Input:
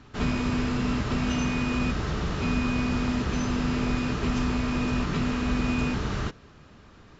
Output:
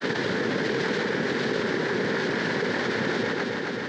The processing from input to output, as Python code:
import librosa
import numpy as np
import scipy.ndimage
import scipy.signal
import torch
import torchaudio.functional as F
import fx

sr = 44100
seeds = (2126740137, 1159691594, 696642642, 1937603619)

p1 = x + 0.65 * np.pad(x, (int(5.8 * sr / 1000.0), 0))[:len(x)]
p2 = fx.stretch_grains(p1, sr, factor=0.54, grain_ms=23.0)
p3 = fx.granulator(p2, sr, seeds[0], grain_ms=100.0, per_s=20.0, spray_ms=100.0, spread_st=0)
p4 = fx.noise_vocoder(p3, sr, seeds[1], bands=3)
p5 = fx.cabinet(p4, sr, low_hz=220.0, low_slope=12, high_hz=4300.0, hz=(310.0, 460.0, 680.0, 1200.0, 1700.0, 2600.0), db=(-8, 3, -6, -8, 5, -5))
p6 = p5 + fx.echo_feedback(p5, sr, ms=270, feedback_pct=51, wet_db=-10.0, dry=0)
p7 = fx.env_flatten(p6, sr, amount_pct=70)
y = F.gain(torch.from_numpy(p7), 5.0).numpy()